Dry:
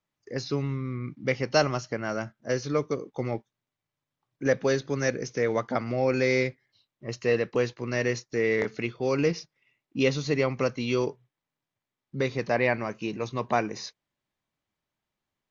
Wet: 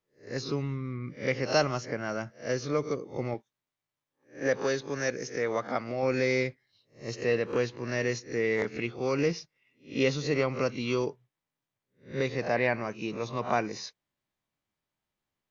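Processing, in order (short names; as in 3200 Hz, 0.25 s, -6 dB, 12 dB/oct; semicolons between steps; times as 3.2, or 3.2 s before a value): spectral swells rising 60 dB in 0.31 s; 3.34–6.03 low shelf 230 Hz -7 dB; gain -3 dB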